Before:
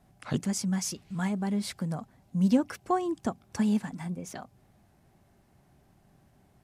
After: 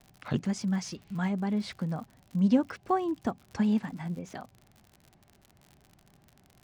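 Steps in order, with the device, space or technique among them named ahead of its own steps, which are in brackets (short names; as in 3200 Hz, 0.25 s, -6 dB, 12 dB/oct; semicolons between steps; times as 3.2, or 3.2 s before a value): lo-fi chain (LPF 4300 Hz 12 dB/oct; wow and flutter; crackle 63/s -41 dBFS)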